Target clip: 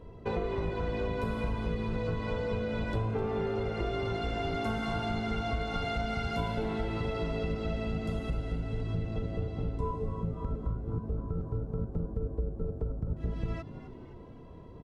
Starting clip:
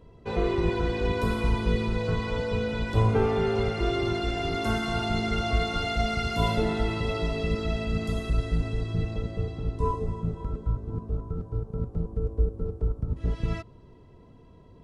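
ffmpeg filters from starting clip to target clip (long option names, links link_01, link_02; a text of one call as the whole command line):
ffmpeg -i in.wav -filter_complex "[0:a]highshelf=frequency=2900:gain=-8.5,bandreject=frequency=50:width_type=h:width=6,bandreject=frequency=100:width_type=h:width=6,bandreject=frequency=150:width_type=h:width=6,bandreject=frequency=200:width_type=h:width=6,bandreject=frequency=250:width_type=h:width=6,bandreject=frequency=300:width_type=h:width=6,bandreject=frequency=350:width_type=h:width=6,acompressor=threshold=-34dB:ratio=6,asplit=2[link_01][link_02];[link_02]asplit=4[link_03][link_04][link_05][link_06];[link_03]adelay=256,afreqshift=100,volume=-14dB[link_07];[link_04]adelay=512,afreqshift=200,volume=-21.3dB[link_08];[link_05]adelay=768,afreqshift=300,volume=-28.7dB[link_09];[link_06]adelay=1024,afreqshift=400,volume=-36dB[link_10];[link_07][link_08][link_09][link_10]amix=inputs=4:normalize=0[link_11];[link_01][link_11]amix=inputs=2:normalize=0,volume=4.5dB" out.wav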